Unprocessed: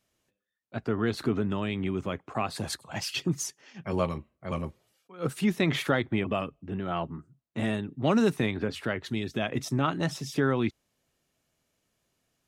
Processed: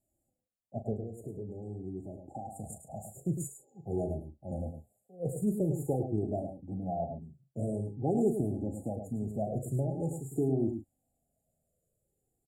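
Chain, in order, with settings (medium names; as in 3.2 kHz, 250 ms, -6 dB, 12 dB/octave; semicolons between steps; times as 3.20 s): 0.93–3.13 s: compression 5:1, threshold -34 dBFS, peak gain reduction 11.5 dB; brick-wall FIR band-stop 840–6800 Hz; doubling 38 ms -10 dB; echo from a far wall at 18 m, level -7 dB; Shepard-style flanger falling 0.47 Hz; trim +1 dB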